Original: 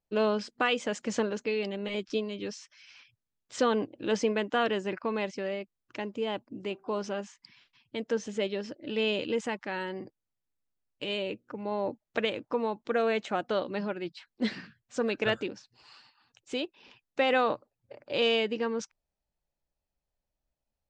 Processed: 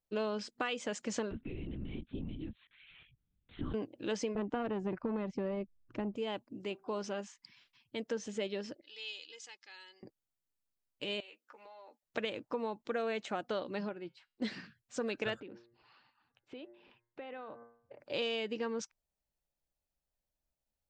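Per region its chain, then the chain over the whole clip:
1.31–3.74 resonant low shelf 380 Hz +10 dB, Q 3 + compressor 2:1, threshold -45 dBFS + LPC vocoder at 8 kHz whisper
4.35–6.16 tilt -4.5 dB/oct + core saturation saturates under 500 Hz
8.81–10.03 band-pass 5100 Hz, Q 1.9 + comb 2.4 ms, depth 55%
11.2–12.03 HPF 970 Hz + doubler 13 ms -5 dB + compressor 16:1, threshold -45 dBFS
13.89–14.42 high shelf 2000 Hz -8.5 dB + resonator 130 Hz, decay 0.34 s, mix 40%
15.4–18 de-hum 117.5 Hz, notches 18 + compressor 4:1, threshold -39 dBFS + air absorption 380 m
whole clip: high shelf 5900 Hz +5 dB; compressor, threshold -27 dBFS; gain -4.5 dB

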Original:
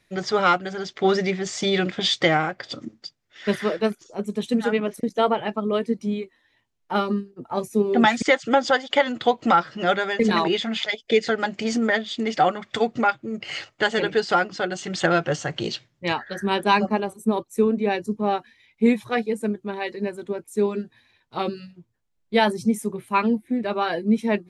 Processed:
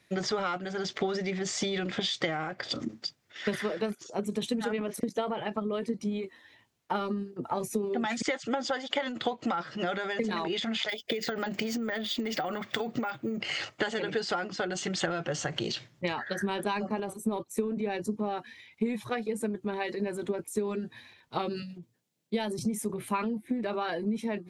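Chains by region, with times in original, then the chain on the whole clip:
10.89–13.39 careless resampling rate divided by 2×, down none, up hold + compressor, threshold -23 dBFS
21.62–22.59 HPF 130 Hz 24 dB/oct + bell 1200 Hz -9 dB 1.6 oct
whole clip: HPF 79 Hz; compressor 6:1, threshold -30 dBFS; transient shaper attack +3 dB, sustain +8 dB

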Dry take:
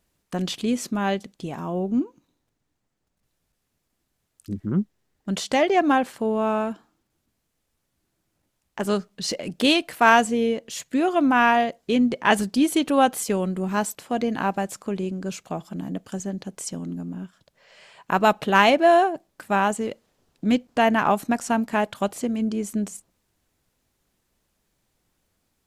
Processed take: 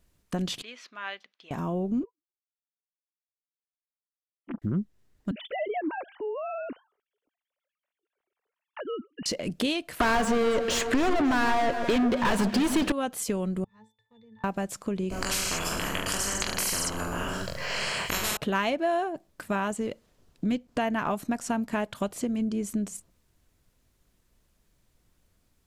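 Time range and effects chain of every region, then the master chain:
0.62–1.51 HPF 1500 Hz + air absorption 270 m
2.03–4.62 sine-wave speech + comb 5.9 ms + upward expander 2.5:1, over -52 dBFS
5.31–9.26 sine-wave speech + compressor 2:1, threshold -36 dBFS
10–12.92 overdrive pedal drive 37 dB, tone 2100 Hz, clips at -3 dBFS + echo with dull and thin repeats by turns 0.138 s, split 1600 Hz, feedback 71%, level -10 dB
13.64–14.44 G.711 law mismatch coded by A + passive tone stack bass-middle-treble 10-0-10 + octave resonator A, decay 0.23 s
15.1–18.37 notch 3600 Hz, Q 5.8 + reverse bouncing-ball echo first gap 20 ms, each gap 1.2×, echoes 6, each echo -2 dB + spectral compressor 10:1
whole clip: low shelf 100 Hz +10.5 dB; notch 810 Hz, Q 12; compressor 3:1, threshold -27 dBFS

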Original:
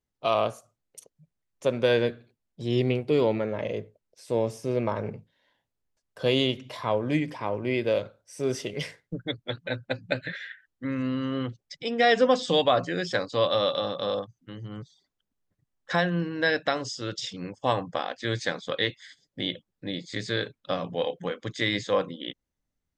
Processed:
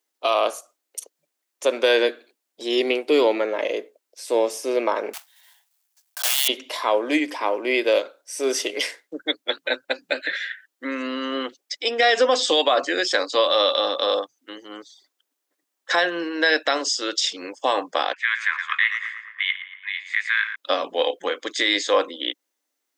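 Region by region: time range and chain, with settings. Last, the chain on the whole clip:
5.13–6.49 block floating point 3-bit + elliptic high-pass 700 Hz, stop band 50 dB + high shelf 3600 Hz +8.5 dB
18.13–20.56 steep high-pass 950 Hz 96 dB/oct + resonant high shelf 3200 Hz -13 dB, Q 3 + tape echo 0.113 s, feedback 76%, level -9.5 dB, low-pass 2300 Hz
whole clip: Chebyshev high-pass 290 Hz, order 4; tilt +2 dB/oct; limiter -17 dBFS; gain +8.5 dB

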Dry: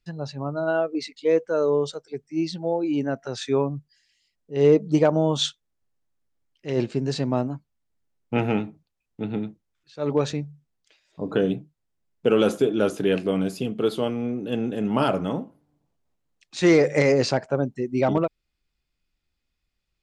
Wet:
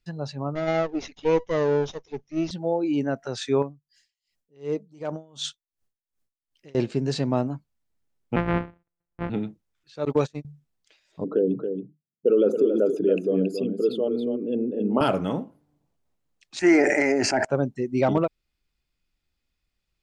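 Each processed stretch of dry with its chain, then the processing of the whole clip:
0.55–2.51 minimum comb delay 0.34 ms + Chebyshev low-pass 7000 Hz, order 10
3.62–6.75 high shelf 4800 Hz +7 dB + compressor 2.5:1, threshold -26 dBFS + dB-linear tremolo 2.7 Hz, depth 26 dB
8.36–9.3 sample sorter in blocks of 256 samples + LPF 2300 Hz 24 dB/oct + transient shaper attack -1 dB, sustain -5 dB
10.05–10.45 gate -26 dBFS, range -32 dB + high shelf 5300 Hz +12 dB
11.24–15.01 formant sharpening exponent 2 + HPF 150 Hz 24 dB/oct + echo 0.276 s -7.5 dB
16.59–17.45 bell 1100 Hz +3.5 dB 1.4 oct + fixed phaser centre 750 Hz, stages 8 + sustainer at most 34 dB/s
whole clip: dry

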